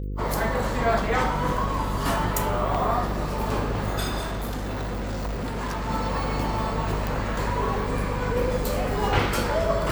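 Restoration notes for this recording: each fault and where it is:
mains buzz 50 Hz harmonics 10 −30 dBFS
0:04.20–0:05.90: clipping −26 dBFS
0:07.07: click

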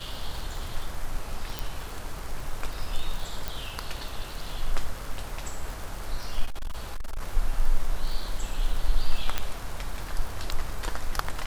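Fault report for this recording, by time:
surface crackle 78 per second −32 dBFS
0:01.59: click
0:03.48: click
0:06.45–0:07.21: clipping −27 dBFS
0:09.38: click −11 dBFS

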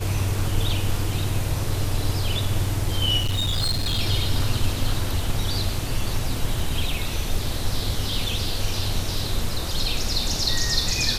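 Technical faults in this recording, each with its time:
0:03.18–0:04.00: clipping −19.5 dBFS

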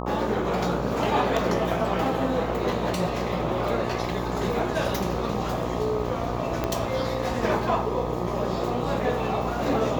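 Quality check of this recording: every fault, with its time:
mains buzz 60 Hz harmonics 21 −31 dBFS
0:06.64: click −12 dBFS

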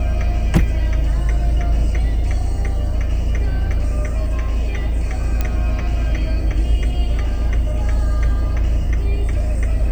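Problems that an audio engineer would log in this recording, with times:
0:05.41: click −7 dBFS

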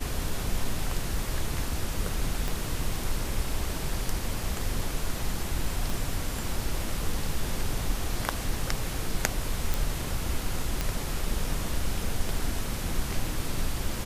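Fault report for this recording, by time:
0:02.48: click
0:05.90: click
0:09.74: click
0:10.81: click

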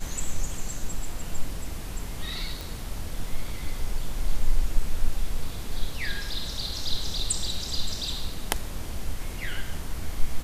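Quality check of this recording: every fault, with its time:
0:02.61: click

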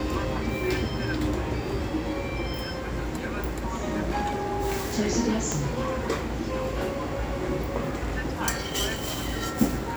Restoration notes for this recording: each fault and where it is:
0:05.52: click −12 dBFS

